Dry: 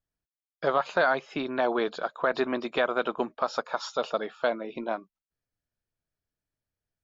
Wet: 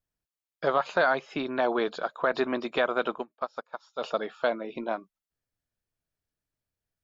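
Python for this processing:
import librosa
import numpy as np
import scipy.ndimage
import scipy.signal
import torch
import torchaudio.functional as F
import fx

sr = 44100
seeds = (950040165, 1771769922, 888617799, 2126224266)

y = fx.upward_expand(x, sr, threshold_db=-36.0, expansion=2.5, at=(3.17, 4.0), fade=0.02)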